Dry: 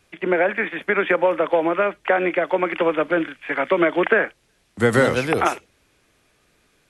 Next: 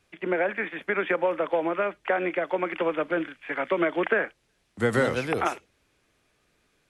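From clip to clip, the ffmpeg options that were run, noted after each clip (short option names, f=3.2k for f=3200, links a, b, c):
-af "highshelf=f=10k:g=-4.5,volume=-6.5dB"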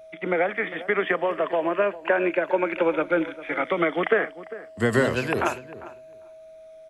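-filter_complex "[0:a]afftfilt=real='re*pow(10,8/40*sin(2*PI*(1.4*log(max(b,1)*sr/1024/100)/log(2)-(-0.3)*(pts-256)/sr)))':imag='im*pow(10,8/40*sin(2*PI*(1.4*log(max(b,1)*sr/1024/100)/log(2)-(-0.3)*(pts-256)/sr)))':win_size=1024:overlap=0.75,asplit=2[a][b];[b]adelay=400,lowpass=f=1.5k:p=1,volume=-15.5dB,asplit=2[c][d];[d]adelay=400,lowpass=f=1.5k:p=1,volume=0.15[e];[a][c][e]amix=inputs=3:normalize=0,aeval=exprs='val(0)+0.00562*sin(2*PI*640*n/s)':c=same,volume=2dB"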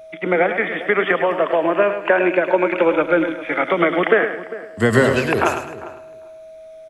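-af "aecho=1:1:105|210|315|420:0.355|0.114|0.0363|0.0116,volume=6dB"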